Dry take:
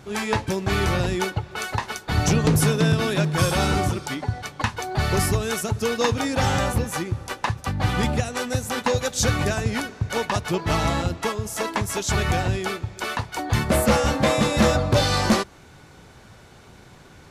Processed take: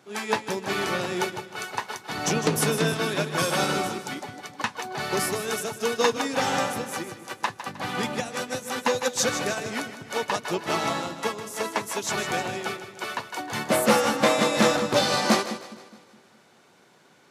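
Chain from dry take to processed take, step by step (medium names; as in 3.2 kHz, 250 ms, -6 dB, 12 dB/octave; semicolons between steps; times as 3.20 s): Bessel high-pass 250 Hz, order 4; on a send: two-band feedback delay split 380 Hz, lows 208 ms, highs 155 ms, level -8 dB; on the sum: upward expansion 1.5:1, over -35 dBFS; trim +1.5 dB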